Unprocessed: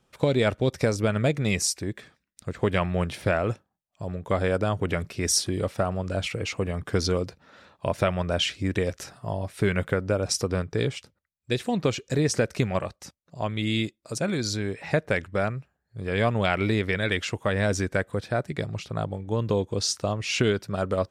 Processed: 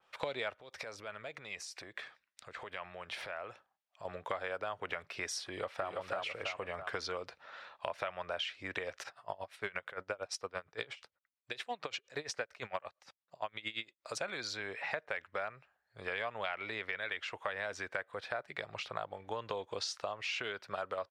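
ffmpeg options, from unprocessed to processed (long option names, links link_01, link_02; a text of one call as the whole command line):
ffmpeg -i in.wav -filter_complex "[0:a]asettb=1/sr,asplit=3[link_01][link_02][link_03];[link_01]atrim=end=0.554[link_04];[link_02]atrim=start=0.55:end=4.05,asetpts=PTS-STARTPTS,afade=type=in:duration=0.004:curve=qsin,afade=type=out:start_time=3.496:duration=0.004:curve=qsin,acompressor=threshold=-36dB:ratio=8:attack=3.2:release=140:knee=1:detection=peak[link_05];[link_03]atrim=start=4.046[link_06];[link_04][link_05]acrossfade=duration=0.004:curve1=hsin:curve2=qsin[link_07];[link_07][link_06]acrossfade=duration=0.004:curve1=qsin:curve2=hsin,asplit=2[link_08][link_09];[link_09]afade=type=in:start_time=5.48:duration=0.01,afade=type=out:start_time=5.9:duration=0.01,aecho=0:1:330|660|990|1320|1650:0.944061|0.330421|0.115647|0.0404766|0.0141668[link_10];[link_08][link_10]amix=inputs=2:normalize=0,asplit=3[link_11][link_12][link_13];[link_11]afade=type=out:start_time=9.02:duration=0.02[link_14];[link_12]aeval=exprs='val(0)*pow(10,-22*(0.5-0.5*cos(2*PI*8.7*n/s))/20)':channel_layout=same,afade=type=in:start_time=9.02:duration=0.02,afade=type=out:start_time=13.99:duration=0.02[link_15];[link_13]afade=type=in:start_time=13.99:duration=0.02[link_16];[link_14][link_15][link_16]amix=inputs=3:normalize=0,acrossover=split=590 4500:gain=0.0631 1 0.178[link_17][link_18][link_19];[link_17][link_18][link_19]amix=inputs=3:normalize=0,acompressor=threshold=-39dB:ratio=5,adynamicequalizer=threshold=0.00251:dfrequency=3100:dqfactor=0.7:tfrequency=3100:tqfactor=0.7:attack=5:release=100:ratio=0.375:range=2:mode=cutabove:tftype=highshelf,volume=3.5dB" out.wav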